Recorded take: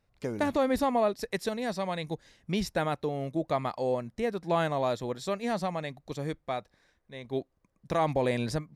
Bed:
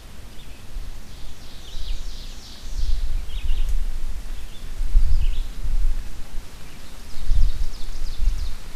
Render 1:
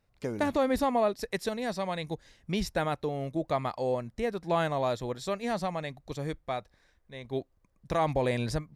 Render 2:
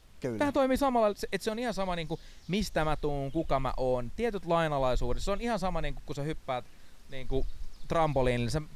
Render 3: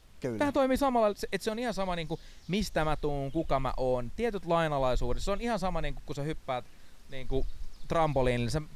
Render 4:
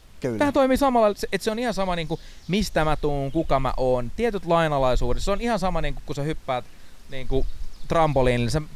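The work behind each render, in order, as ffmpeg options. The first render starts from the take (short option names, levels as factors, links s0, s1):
-af "asubboost=boost=2:cutoff=110"
-filter_complex "[1:a]volume=0.141[s0];[0:a][s0]amix=inputs=2:normalize=0"
-af anull
-af "volume=2.37"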